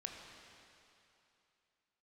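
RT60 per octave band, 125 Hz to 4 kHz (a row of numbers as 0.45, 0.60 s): 2.7, 2.7, 2.8, 2.9, 2.8, 2.7 s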